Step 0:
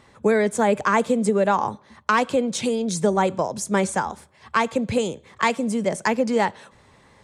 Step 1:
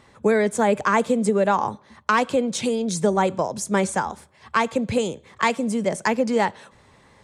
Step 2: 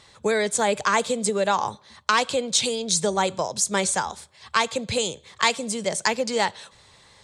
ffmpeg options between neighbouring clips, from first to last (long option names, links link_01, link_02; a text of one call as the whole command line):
ffmpeg -i in.wav -af anull out.wav
ffmpeg -i in.wav -af "equalizer=frequency=250:width_type=o:width=1:gain=-7,equalizer=frequency=4000:width_type=o:width=1:gain=11,equalizer=frequency=8000:width_type=o:width=1:gain=8,volume=-2dB" out.wav